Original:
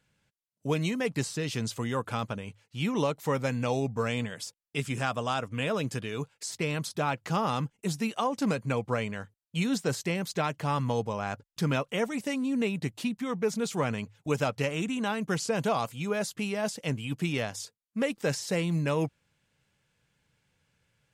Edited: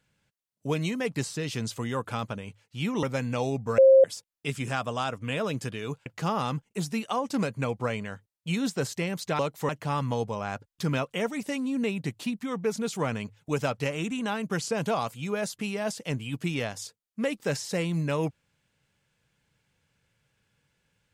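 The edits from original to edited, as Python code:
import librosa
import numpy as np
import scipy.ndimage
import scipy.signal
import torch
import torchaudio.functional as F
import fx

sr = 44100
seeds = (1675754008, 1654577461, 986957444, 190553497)

y = fx.edit(x, sr, fx.move(start_s=3.03, length_s=0.3, to_s=10.47),
    fx.bleep(start_s=4.08, length_s=0.26, hz=533.0, db=-12.0),
    fx.cut(start_s=6.36, length_s=0.78), tone=tone)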